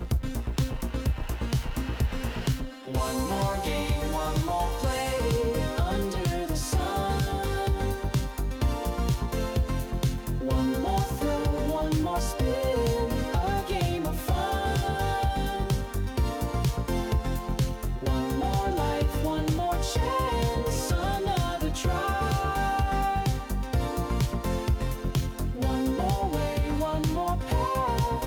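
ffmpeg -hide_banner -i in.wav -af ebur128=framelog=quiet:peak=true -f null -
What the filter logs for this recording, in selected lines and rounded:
Integrated loudness:
  I:         -28.4 LUFS
  Threshold: -38.4 LUFS
Loudness range:
  LRA:         1.7 LU
  Threshold: -48.3 LUFS
  LRA low:   -29.2 LUFS
  LRA high:  -27.5 LUFS
True peak:
  Peak:      -15.2 dBFS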